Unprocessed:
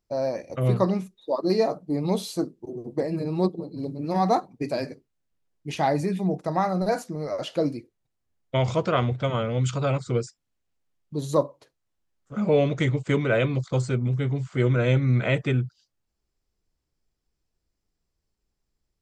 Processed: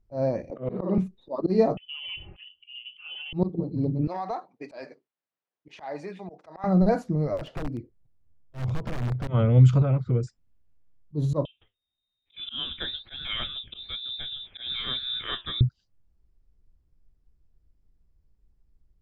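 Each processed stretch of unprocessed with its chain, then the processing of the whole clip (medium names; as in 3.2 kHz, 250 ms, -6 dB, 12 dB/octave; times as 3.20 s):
0.50–0.98 s: high-pass 220 Hz 24 dB/octave + tape spacing loss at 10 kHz 22 dB + flutter echo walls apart 9.1 m, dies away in 0.42 s
1.77–3.33 s: comb 4.6 ms + compression 3:1, threshold -30 dBFS + frequency inversion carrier 3.2 kHz
4.07–6.64 s: band-pass 730–6600 Hz + compression 3:1, threshold -28 dBFS
7.37–9.28 s: treble shelf 2.2 kHz -6.5 dB + compression 5:1, threshold -33 dBFS + integer overflow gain 29.5 dB
9.82–10.23 s: low-pass 2.7 kHz + compression 1.5:1, threshold -37 dBFS
11.45–15.61 s: frequency inversion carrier 3.7 kHz + flange 1.1 Hz, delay 5.6 ms, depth 7.6 ms, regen +72%
whole clip: slow attack 123 ms; RIAA curve playback; trim -1.5 dB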